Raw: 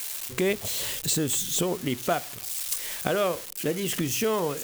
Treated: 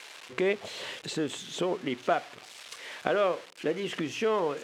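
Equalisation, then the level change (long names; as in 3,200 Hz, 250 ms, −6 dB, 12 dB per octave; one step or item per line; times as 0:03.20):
band-pass filter 150–6,200 Hz
bass and treble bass −8 dB, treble −13 dB
0.0 dB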